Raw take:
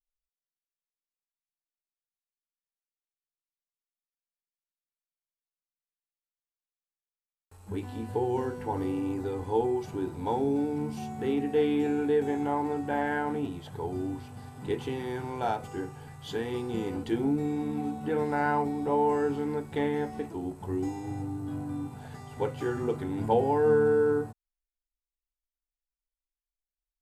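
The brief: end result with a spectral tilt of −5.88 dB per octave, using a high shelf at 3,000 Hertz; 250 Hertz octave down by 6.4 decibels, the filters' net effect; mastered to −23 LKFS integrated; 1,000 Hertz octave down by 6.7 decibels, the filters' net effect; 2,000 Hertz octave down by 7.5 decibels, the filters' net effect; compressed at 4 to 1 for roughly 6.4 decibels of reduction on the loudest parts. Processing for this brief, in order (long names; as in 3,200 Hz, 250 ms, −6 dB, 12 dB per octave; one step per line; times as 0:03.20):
parametric band 250 Hz −7.5 dB
parametric band 1,000 Hz −7 dB
parametric band 2,000 Hz −5.5 dB
high-shelf EQ 3,000 Hz −5 dB
downward compressor 4 to 1, threshold −31 dBFS
level +14.5 dB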